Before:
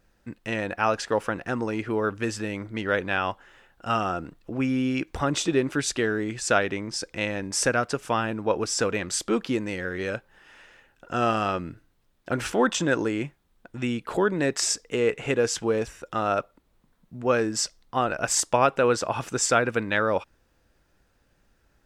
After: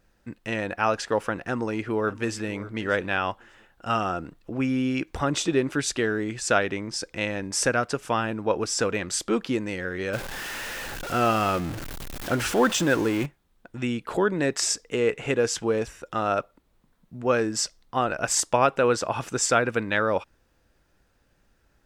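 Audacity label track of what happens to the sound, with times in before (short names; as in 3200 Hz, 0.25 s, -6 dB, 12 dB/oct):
1.400000	2.470000	echo throw 0.59 s, feedback 15%, level -17.5 dB
10.130000	13.260000	zero-crossing step of -29 dBFS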